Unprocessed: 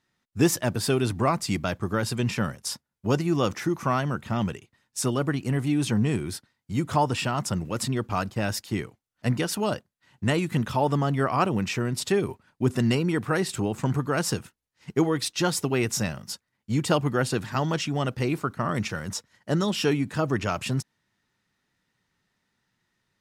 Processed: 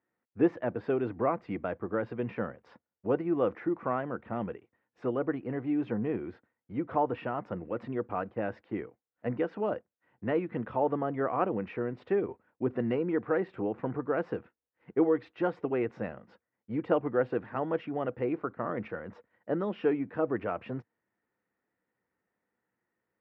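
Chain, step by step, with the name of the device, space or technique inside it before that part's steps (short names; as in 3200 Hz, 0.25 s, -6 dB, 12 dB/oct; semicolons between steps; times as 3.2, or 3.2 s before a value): bass cabinet (speaker cabinet 85–2100 Hz, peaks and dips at 100 Hz -6 dB, 150 Hz -9 dB, 320 Hz +5 dB, 490 Hz +10 dB, 710 Hz +4 dB); gain -8 dB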